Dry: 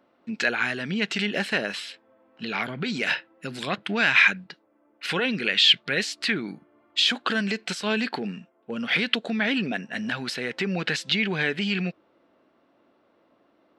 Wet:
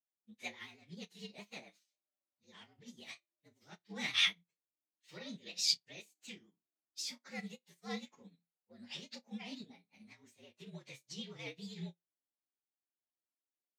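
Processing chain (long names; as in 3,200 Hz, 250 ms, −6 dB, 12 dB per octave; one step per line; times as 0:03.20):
partials spread apart or drawn together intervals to 116%
pitch vibrato 9.3 Hz 75 cents
flutter between parallel walls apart 5 metres, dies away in 0.21 s
expander for the loud parts 2.5 to 1, over −43 dBFS
level −7 dB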